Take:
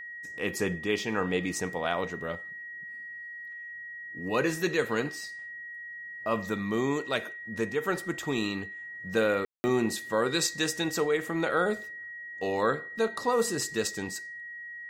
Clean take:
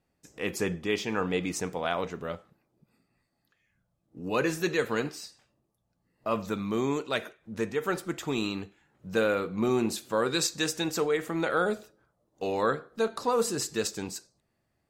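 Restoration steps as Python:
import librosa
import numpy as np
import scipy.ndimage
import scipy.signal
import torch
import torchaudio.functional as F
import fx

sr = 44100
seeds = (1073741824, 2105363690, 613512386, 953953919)

y = fx.notch(x, sr, hz=1900.0, q=30.0)
y = fx.fix_ambience(y, sr, seeds[0], print_start_s=5.67, print_end_s=6.17, start_s=9.45, end_s=9.64)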